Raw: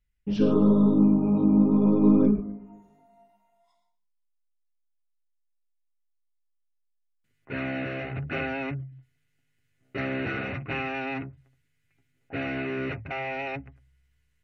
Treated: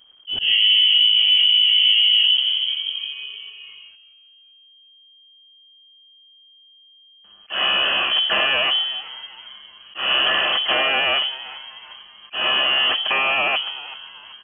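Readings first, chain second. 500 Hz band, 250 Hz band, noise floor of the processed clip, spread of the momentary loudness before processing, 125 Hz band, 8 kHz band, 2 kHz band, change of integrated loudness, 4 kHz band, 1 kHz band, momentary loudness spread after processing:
-0.5 dB, -21.0 dB, -52 dBFS, 18 LU, under -20 dB, n/a, +14.0 dB, +9.0 dB, +35.5 dB, +10.5 dB, 20 LU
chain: G.711 law mismatch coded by mu; frequency-shifting echo 0.384 s, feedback 48%, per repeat -140 Hz, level -18.5 dB; in parallel at +2.5 dB: compressor 5:1, threshold -30 dBFS, peak gain reduction 14.5 dB; on the sum: auto swell 0.169 s; inverted band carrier 3200 Hz; limiter -13.5 dBFS, peak gain reduction 8.5 dB; gain +5 dB

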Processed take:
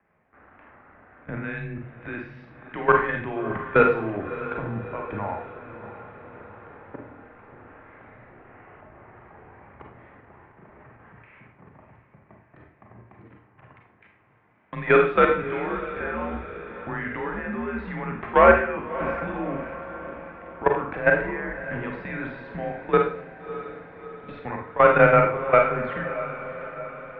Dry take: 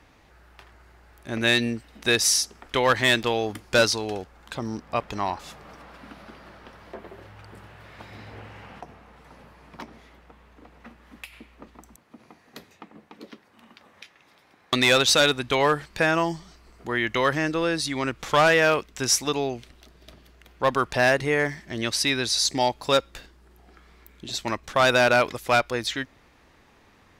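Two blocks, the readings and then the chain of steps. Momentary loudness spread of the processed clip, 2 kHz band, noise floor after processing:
22 LU, -1.5 dB, -59 dBFS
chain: level quantiser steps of 18 dB; Schroeder reverb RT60 0.46 s, combs from 33 ms, DRR 1.5 dB; mistuned SSB -99 Hz 160–2300 Hz; on a send: diffused feedback echo 0.632 s, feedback 56%, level -13 dB; on the sum: gain +4.5 dB

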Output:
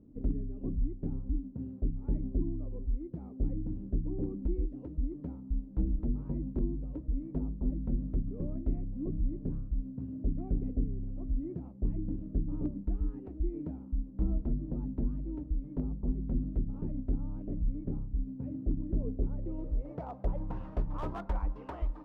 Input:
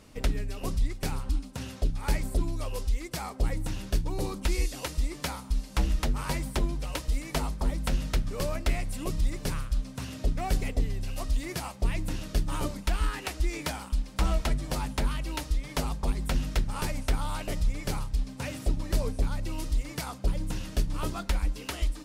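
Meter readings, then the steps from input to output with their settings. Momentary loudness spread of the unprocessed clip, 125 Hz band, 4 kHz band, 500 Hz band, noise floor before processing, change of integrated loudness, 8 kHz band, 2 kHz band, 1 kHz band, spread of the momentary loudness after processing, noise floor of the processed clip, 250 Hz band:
4 LU, -4.0 dB, under -30 dB, -7.0 dB, -44 dBFS, -4.5 dB, under -40 dB, under -20 dB, -13.0 dB, 5 LU, -47 dBFS, +0.5 dB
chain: low-pass sweep 290 Hz -> 970 Hz, 18.9–20.59; slew limiter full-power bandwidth 25 Hz; gain -5 dB

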